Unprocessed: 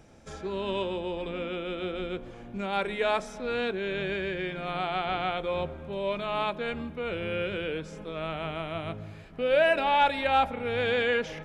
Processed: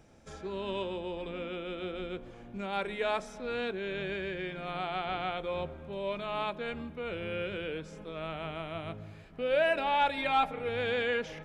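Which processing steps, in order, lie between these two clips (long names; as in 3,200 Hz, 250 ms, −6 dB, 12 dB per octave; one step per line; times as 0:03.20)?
0:10.16–0:10.69: comb filter 6.6 ms, depth 71%
level −4.5 dB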